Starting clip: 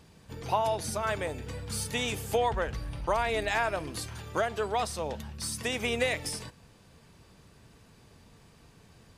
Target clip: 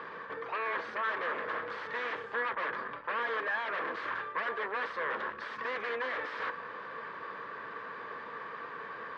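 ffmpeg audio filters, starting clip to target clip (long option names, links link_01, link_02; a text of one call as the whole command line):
ffmpeg -i in.wav -af "equalizer=frequency=1200:width_type=o:width=0.78:gain=5,areverse,acompressor=threshold=-39dB:ratio=16,areverse,aeval=exprs='0.0299*sin(PI/2*4.47*val(0)/0.0299)':channel_layout=same,highpass=470,equalizer=frequency=480:width_type=q:width=4:gain=7,equalizer=frequency=750:width_type=q:width=4:gain=-6,equalizer=frequency=1100:width_type=q:width=4:gain=9,equalizer=frequency=1700:width_type=q:width=4:gain=10,equalizer=frequency=2700:width_type=q:width=4:gain=-6,lowpass=frequency=2900:width=0.5412,lowpass=frequency=2900:width=1.3066,volume=-2dB" out.wav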